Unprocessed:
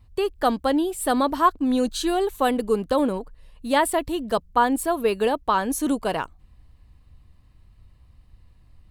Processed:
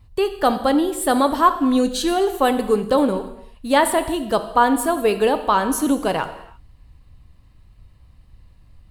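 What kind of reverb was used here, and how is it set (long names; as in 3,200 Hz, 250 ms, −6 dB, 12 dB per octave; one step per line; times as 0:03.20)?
reverb whose tail is shaped and stops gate 360 ms falling, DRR 8.5 dB
level +3.5 dB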